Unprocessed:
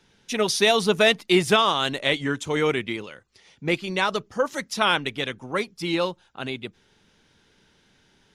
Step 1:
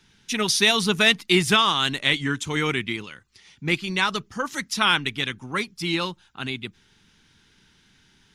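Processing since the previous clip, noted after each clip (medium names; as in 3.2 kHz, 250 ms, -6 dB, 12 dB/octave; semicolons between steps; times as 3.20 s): peaking EQ 560 Hz -13.5 dB 1.1 oct; trim +3.5 dB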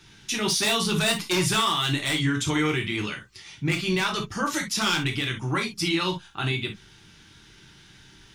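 wavefolder -13 dBFS; peak limiter -23.5 dBFS, peak gain reduction 10.5 dB; on a send at -1 dB: reverberation, pre-delay 3 ms; on the sum: trim +5 dB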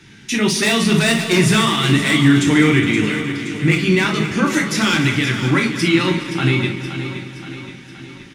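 backward echo that repeats 104 ms, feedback 80%, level -13 dB; graphic EQ 125/250/500/2000/8000 Hz +7/+12/+5/+10/+4 dB; feedback delay 522 ms, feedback 55%, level -11 dB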